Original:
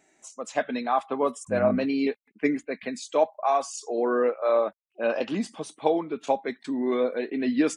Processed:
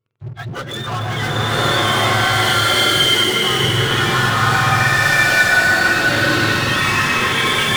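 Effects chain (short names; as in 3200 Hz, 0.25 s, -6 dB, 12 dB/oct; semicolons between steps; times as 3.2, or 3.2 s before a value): spectrum mirrored in octaves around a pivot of 930 Hz; echo with dull and thin repeats by turns 0.138 s, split 960 Hz, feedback 57%, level -7 dB; sample leveller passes 5; bloom reverb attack 1.17 s, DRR -11 dB; gain -8.5 dB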